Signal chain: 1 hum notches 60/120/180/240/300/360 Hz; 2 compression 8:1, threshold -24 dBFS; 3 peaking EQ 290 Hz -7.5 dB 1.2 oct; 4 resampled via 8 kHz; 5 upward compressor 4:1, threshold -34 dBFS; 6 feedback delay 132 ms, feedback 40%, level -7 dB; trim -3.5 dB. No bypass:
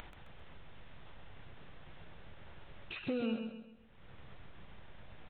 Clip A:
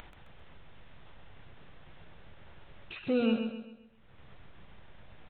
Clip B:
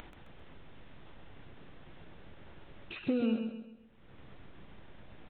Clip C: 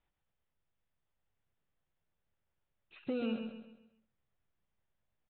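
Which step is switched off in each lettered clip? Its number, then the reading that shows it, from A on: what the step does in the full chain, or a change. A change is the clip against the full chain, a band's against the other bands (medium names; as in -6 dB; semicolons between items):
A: 2, mean gain reduction 4.5 dB; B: 3, 250 Hz band +5.5 dB; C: 5, crest factor change +1.5 dB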